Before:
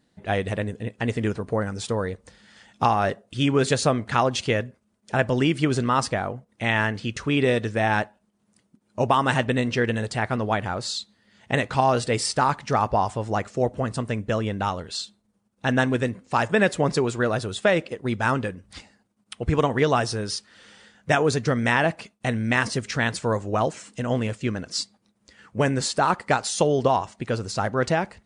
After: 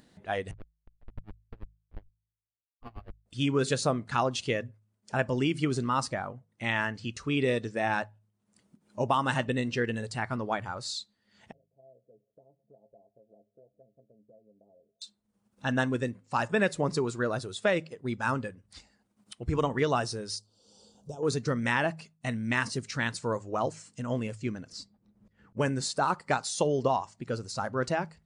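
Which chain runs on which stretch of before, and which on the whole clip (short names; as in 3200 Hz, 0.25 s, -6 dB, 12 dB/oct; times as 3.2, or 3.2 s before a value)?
0.51–3.26 Schmitt trigger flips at -19 dBFS + air absorption 410 m + dB-linear tremolo 8.9 Hz, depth 30 dB
11.52–15.02 rippled Chebyshev low-pass 670 Hz, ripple 3 dB + differentiator + metallic resonator 62 Hz, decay 0.21 s, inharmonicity 0.03
20.36–21.23 compressor 8:1, threshold -25 dBFS + Butterworth band-stop 1900 Hz, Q 0.57 + bell 460 Hz +3.5 dB 0.4 oct
24.72–25.57 tilt -4 dB/oct + auto swell 0.689 s
whole clip: de-hum 53.19 Hz, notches 3; spectral noise reduction 7 dB; upward compressor, threshold -40 dBFS; gain -6 dB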